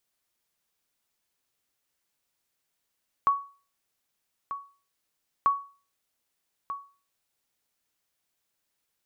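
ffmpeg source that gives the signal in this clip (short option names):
-f lavfi -i "aevalsrc='0.178*(sin(2*PI*1120*mod(t,2.19))*exp(-6.91*mod(t,2.19)/0.37)+0.251*sin(2*PI*1120*max(mod(t,2.19)-1.24,0))*exp(-6.91*max(mod(t,2.19)-1.24,0)/0.37))':d=4.38:s=44100"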